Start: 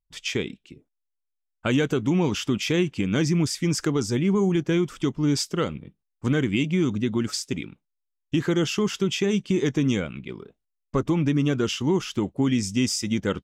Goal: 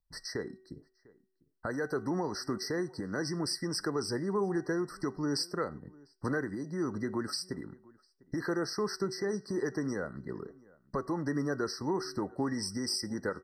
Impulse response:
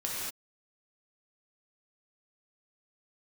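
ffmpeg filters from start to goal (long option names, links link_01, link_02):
-filter_complex "[0:a]bandreject=frequency=377.2:width_type=h:width=4,bandreject=frequency=754.4:width_type=h:width=4,bandreject=frequency=1131.6:width_type=h:width=4,bandreject=frequency=1508.8:width_type=h:width=4,bandreject=frequency=1886:width_type=h:width=4,bandreject=frequency=2263.2:width_type=h:width=4,acrossover=split=400|1300[link_01][link_02][link_03];[link_01]acompressor=threshold=-38dB:ratio=4[link_04];[link_04][link_02][link_03]amix=inputs=3:normalize=0,alimiter=limit=-22dB:level=0:latency=1:release=484,asplit=2[link_05][link_06];[link_06]adelay=699.7,volume=-24dB,highshelf=frequency=4000:gain=-15.7[link_07];[link_05][link_07]amix=inputs=2:normalize=0,asplit=2[link_08][link_09];[1:a]atrim=start_sample=2205,atrim=end_sample=6174,asetrate=57330,aresample=44100[link_10];[link_09][link_10]afir=irnorm=-1:irlink=0,volume=-20.5dB[link_11];[link_08][link_11]amix=inputs=2:normalize=0,afftfilt=real='re*eq(mod(floor(b*sr/1024/2000),2),0)':imag='im*eq(mod(floor(b*sr/1024/2000),2),0)':win_size=1024:overlap=0.75"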